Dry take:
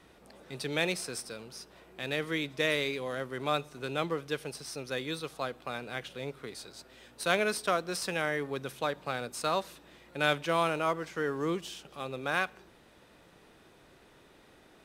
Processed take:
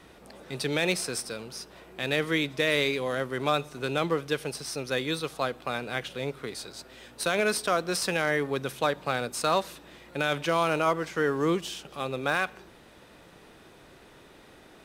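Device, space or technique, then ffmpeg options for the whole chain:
limiter into clipper: -af "alimiter=limit=-19dB:level=0:latency=1:release=63,asoftclip=type=hard:threshold=-21dB,volume=6dB"

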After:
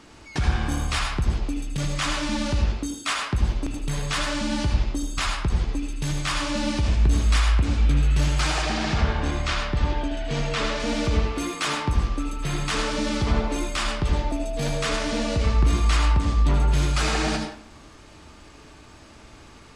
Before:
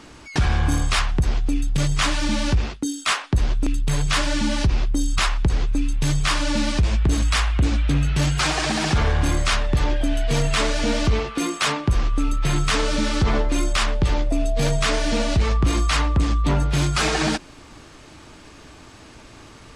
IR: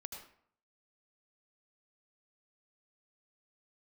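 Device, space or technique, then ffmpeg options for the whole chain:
bathroom: -filter_complex "[0:a]asettb=1/sr,asplit=3[a][b][c];[a]atrim=end=8.624[d];[b]atrim=start=8.62:end=10.8,asetpts=PTS-STARTPTS,afade=t=in:d=0.004:c=qsin,afade=t=out:st=2.176:d=0.004:c=qsin,lowpass=5.8k[e];[c]atrim=start=10.796[f];[d][e]acrossfade=d=0.004:c1=hsin:c2=qsin[g];[g][f]acrossfade=d=0.004:c1=qsin:c2=hsin[h];[1:a]atrim=start_sample=2205[i];[h][i]afir=irnorm=-1:irlink=0"

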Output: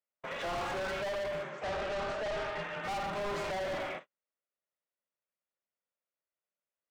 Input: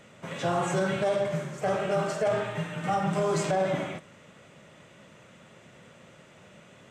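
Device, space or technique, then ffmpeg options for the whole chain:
walkie-talkie: -filter_complex "[0:a]highpass=570,lowpass=2.9k,asoftclip=type=hard:threshold=-36.5dB,agate=range=-46dB:threshold=-47dB:ratio=16:detection=peak,lowshelf=f=180:g=9.5,asettb=1/sr,asplit=3[a][b][c];[a]atrim=end=1.494[d];[b]atrim=start=1.49:end=2.83,asetpts=PTS-STARTPTS,afade=t=in:d=0.004:c=qsin,afade=t=out:st=1.336:d=0.004:c=qsin,lowpass=7.4k[e];[c]atrim=start=2.826[f];[d][e]acrossfade=d=0.004:c1=hsin:c2=qsin[g];[g][f]acrossfade=d=0.004:c1=qsin:c2=hsin,volume=2dB"

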